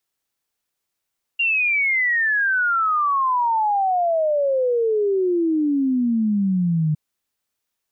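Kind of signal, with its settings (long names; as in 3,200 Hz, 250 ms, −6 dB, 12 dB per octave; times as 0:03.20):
exponential sine sweep 2,800 Hz → 150 Hz 5.56 s −16.5 dBFS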